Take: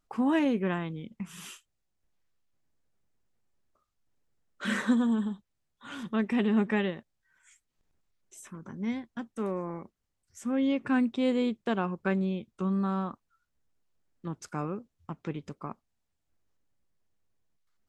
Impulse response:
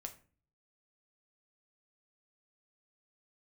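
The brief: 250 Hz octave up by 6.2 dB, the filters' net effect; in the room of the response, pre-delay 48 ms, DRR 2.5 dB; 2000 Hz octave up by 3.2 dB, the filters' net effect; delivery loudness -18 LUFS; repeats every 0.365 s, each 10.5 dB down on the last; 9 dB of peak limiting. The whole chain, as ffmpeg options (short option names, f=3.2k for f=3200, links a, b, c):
-filter_complex "[0:a]equalizer=f=250:t=o:g=7,equalizer=f=2k:t=o:g=4,alimiter=limit=-17.5dB:level=0:latency=1,aecho=1:1:365|730|1095:0.299|0.0896|0.0269,asplit=2[a][b];[1:a]atrim=start_sample=2205,adelay=48[c];[b][c]afir=irnorm=-1:irlink=0,volume=1.5dB[d];[a][d]amix=inputs=2:normalize=0,volume=8dB"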